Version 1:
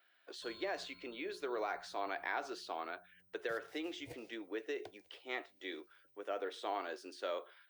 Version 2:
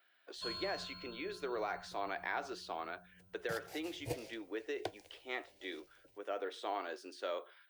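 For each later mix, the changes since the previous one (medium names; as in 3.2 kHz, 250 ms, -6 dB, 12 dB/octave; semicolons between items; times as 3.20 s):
background +12.0 dB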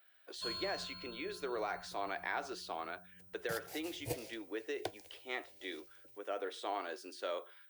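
master: add treble shelf 9 kHz +11 dB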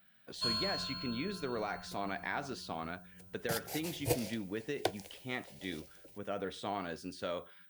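speech: remove Chebyshev high-pass 330 Hz, order 4; background +7.5 dB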